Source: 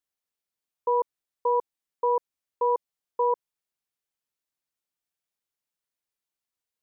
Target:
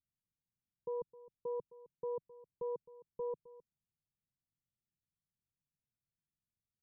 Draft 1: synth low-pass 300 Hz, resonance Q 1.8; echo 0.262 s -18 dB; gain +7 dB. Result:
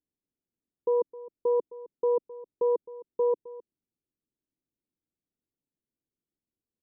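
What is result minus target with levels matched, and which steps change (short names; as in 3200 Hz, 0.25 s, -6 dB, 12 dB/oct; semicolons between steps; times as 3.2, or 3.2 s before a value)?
125 Hz band -15.5 dB
change: synth low-pass 150 Hz, resonance Q 1.8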